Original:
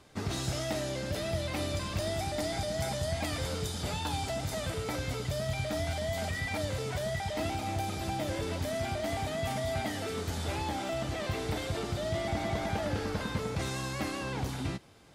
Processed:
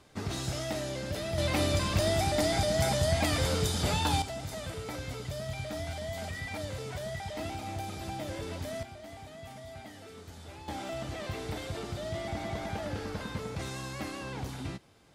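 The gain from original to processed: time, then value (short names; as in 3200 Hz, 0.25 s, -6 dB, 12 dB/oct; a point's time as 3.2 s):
-1 dB
from 1.38 s +5.5 dB
from 4.22 s -4 dB
from 8.83 s -13 dB
from 10.68 s -3.5 dB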